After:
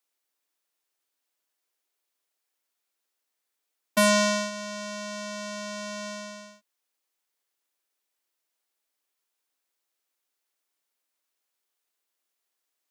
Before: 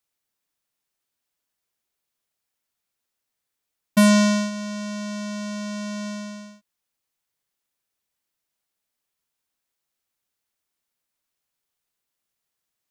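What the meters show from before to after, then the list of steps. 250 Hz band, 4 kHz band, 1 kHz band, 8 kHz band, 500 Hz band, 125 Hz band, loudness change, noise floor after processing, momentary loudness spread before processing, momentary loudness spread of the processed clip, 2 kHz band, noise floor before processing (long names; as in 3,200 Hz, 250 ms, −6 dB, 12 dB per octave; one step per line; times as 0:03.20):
−10.5 dB, 0.0 dB, 0.0 dB, 0.0 dB, 0.0 dB, can't be measured, −4.5 dB, −82 dBFS, 17 LU, 17 LU, 0.0 dB, −83 dBFS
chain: high-pass filter 280 Hz 24 dB per octave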